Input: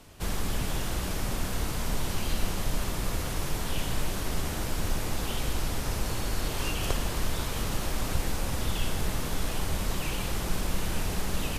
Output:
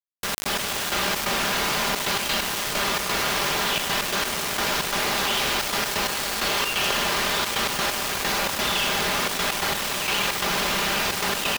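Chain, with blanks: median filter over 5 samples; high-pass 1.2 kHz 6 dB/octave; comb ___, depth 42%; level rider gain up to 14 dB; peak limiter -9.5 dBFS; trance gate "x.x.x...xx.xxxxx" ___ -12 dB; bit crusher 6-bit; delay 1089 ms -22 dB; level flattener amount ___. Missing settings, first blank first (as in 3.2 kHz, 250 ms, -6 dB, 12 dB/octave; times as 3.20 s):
5 ms, 131 bpm, 70%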